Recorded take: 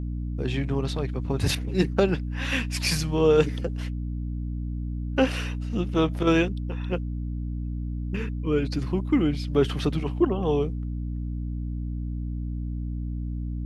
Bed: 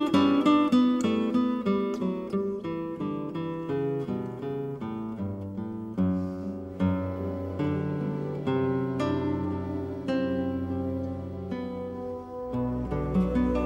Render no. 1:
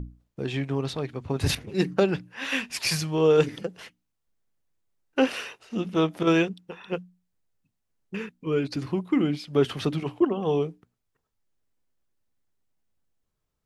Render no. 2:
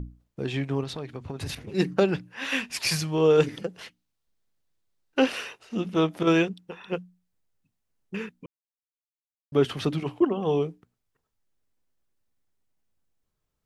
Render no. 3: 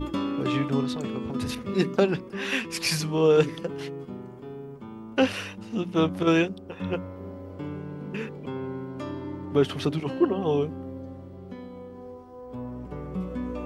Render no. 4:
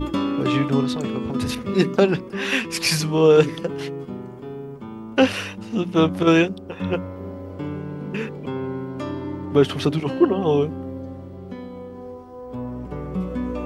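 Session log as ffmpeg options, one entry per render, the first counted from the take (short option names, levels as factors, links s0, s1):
-af "bandreject=f=60:t=h:w=6,bandreject=f=120:t=h:w=6,bandreject=f=180:t=h:w=6,bandreject=f=240:t=h:w=6,bandreject=f=300:t=h:w=6"
-filter_complex "[0:a]asettb=1/sr,asplit=3[s0][s1][s2];[s0]atrim=end=0.834[s3];[s1]atrim=start=0.83:end=1.68,asetpts=PTS-STARTPTS,afade=t=in:d=0.004:c=qsin,afade=t=out:st=0.846:d=0.004:c=qsin,acompressor=threshold=0.0316:ratio=6:attack=3.2:release=140:knee=1:detection=peak[s4];[s2]atrim=start=1.676[s5];[s3][s4]acrossfade=d=0.004:c1=hsin:c2=qsin[s6];[s6][s5]acrossfade=d=0.004:c1=qsin:c2=hsin,asettb=1/sr,asplit=3[s7][s8][s9];[s7]atrim=end=3.814[s10];[s8]atrim=start=3.81:end=5.31,asetpts=PTS-STARTPTS,afade=t=in:d=0.004:c=qsin,afade=t=out:st=1.496:d=0.004:c=qsin,equalizer=f=4100:w=1.5:g=4.5[s11];[s9]atrim=start=5.306[s12];[s10][s11]acrossfade=d=0.004:c1=hsin:c2=qsin[s13];[s13][s12]acrossfade=d=0.004:c1=qsin:c2=hsin,asplit=3[s14][s15][s16];[s14]atrim=end=8.46,asetpts=PTS-STARTPTS,afade=t=out:st=8.456:d=0.004:c=hsin[s17];[s15]atrim=start=8.46:end=9.52,asetpts=PTS-STARTPTS,volume=0[s18];[s16]atrim=start=9.52,asetpts=PTS-STARTPTS,afade=t=in:d=0.004:c=hsin[s19];[s17][s18][s19]concat=n=3:v=0:a=1"
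-filter_complex "[1:a]volume=0.447[s0];[0:a][s0]amix=inputs=2:normalize=0"
-af "volume=1.88,alimiter=limit=0.708:level=0:latency=1"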